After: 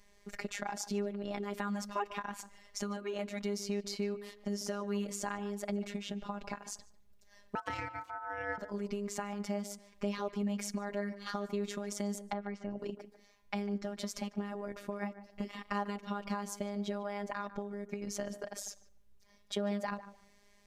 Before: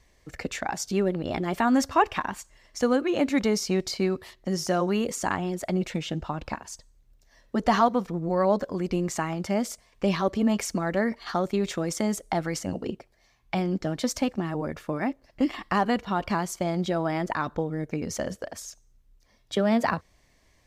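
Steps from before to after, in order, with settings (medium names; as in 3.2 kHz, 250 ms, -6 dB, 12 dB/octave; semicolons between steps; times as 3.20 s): 12.29–12.79 s: low-pass that closes with the level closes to 1.9 kHz, closed at -27 dBFS; compression 2.5:1, threshold -36 dBFS, peak gain reduction 13.5 dB; robot voice 203 Hz; 7.55–8.58 s: ring modulator 1.1 kHz; tape echo 148 ms, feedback 24%, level -11.5 dB, low-pass 1.3 kHz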